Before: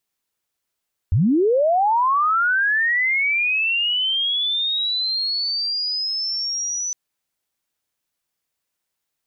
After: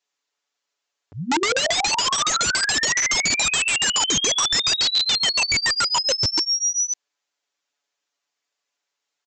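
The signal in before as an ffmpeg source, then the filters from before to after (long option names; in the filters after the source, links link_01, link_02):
-f lavfi -i "aevalsrc='pow(10,(-13.5-9*t/5.81)/20)*sin(2*PI*(73*t+5927*t*t/(2*5.81)))':duration=5.81:sample_rate=44100"
-af "highpass=390,aecho=1:1:7:0.96,aresample=16000,aeval=exprs='(mod(6.31*val(0)+1,2)-1)/6.31':channel_layout=same,aresample=44100"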